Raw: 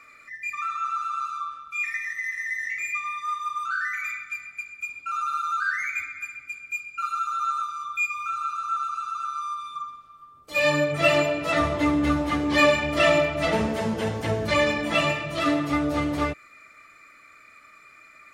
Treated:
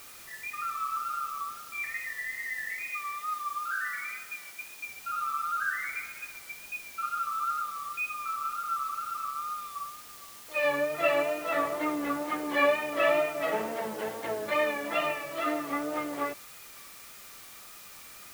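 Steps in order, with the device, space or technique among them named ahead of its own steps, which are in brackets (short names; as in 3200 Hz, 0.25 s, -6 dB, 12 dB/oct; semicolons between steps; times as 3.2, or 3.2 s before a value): wax cylinder (BPF 390–2300 Hz; wow and flutter; white noise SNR 16 dB); 2.88–4.86 HPF 230 Hz 6 dB/oct; gain -4 dB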